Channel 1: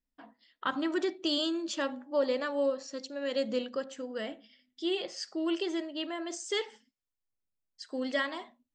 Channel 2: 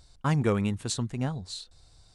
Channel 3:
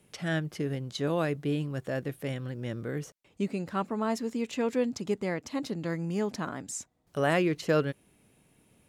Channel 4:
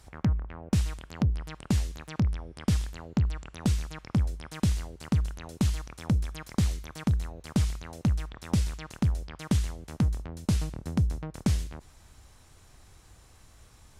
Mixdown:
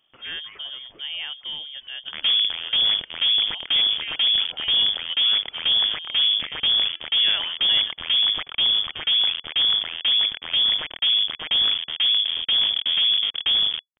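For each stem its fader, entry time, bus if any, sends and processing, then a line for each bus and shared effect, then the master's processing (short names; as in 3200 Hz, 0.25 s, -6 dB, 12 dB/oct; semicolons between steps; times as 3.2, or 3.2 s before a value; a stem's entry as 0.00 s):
-17.0 dB, 0.80 s, no send, no echo send, limiter -28.5 dBFS, peak gain reduction 11 dB; sustainer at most 59 dB/s
-11.0 dB, 0.00 s, no send, echo send -6.5 dB, HPF 990 Hz
-3.5 dB, 0.00 s, no send, no echo send, dry
-6.0 dB, 2.00 s, no send, no echo send, fuzz box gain 41 dB, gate -43 dBFS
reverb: off
echo: feedback echo 0.269 s, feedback 29%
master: inverted band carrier 3400 Hz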